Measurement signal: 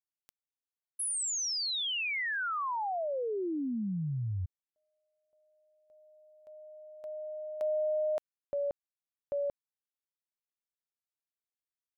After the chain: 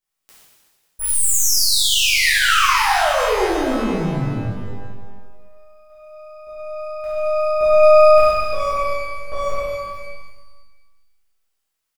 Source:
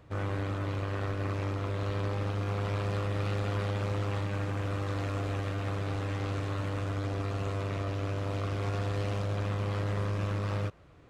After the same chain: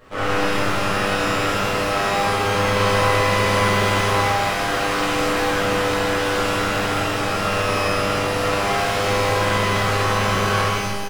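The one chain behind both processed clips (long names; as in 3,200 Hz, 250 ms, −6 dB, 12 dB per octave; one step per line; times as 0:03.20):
high-pass filter 120 Hz 6 dB per octave
parametric band 1,400 Hz +3 dB 0.37 octaves
mains-hum notches 50/100/150/200/250/300/350/400/450/500 Hz
half-wave rectification
reverse bouncing-ball delay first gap 50 ms, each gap 1.4×, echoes 5
reverb with rising layers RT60 1.1 s, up +12 semitones, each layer −8 dB, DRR −10 dB
level +8.5 dB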